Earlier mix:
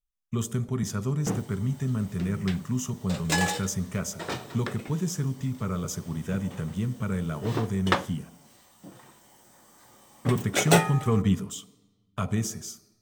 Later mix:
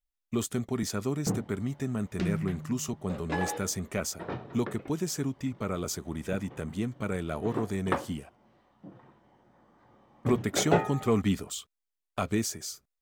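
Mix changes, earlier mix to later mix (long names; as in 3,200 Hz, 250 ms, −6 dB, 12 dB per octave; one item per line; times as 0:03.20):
first sound: add head-to-tape spacing loss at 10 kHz 45 dB
second sound +6.0 dB
reverb: off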